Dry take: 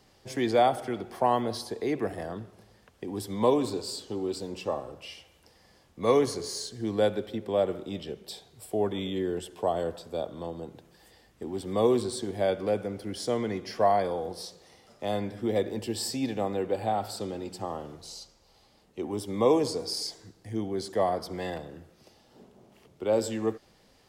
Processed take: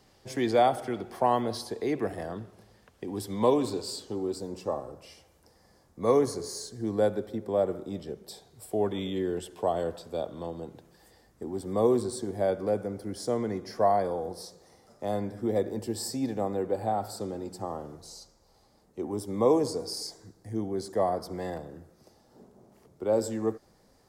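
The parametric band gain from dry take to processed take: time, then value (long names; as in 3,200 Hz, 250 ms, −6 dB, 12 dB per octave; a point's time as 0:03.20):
parametric band 2,900 Hz 0.98 octaves
0:03.94 −2 dB
0:04.39 −13 dB
0:08.20 −13 dB
0:08.85 −2.5 dB
0:10.65 −2.5 dB
0:11.51 −13 dB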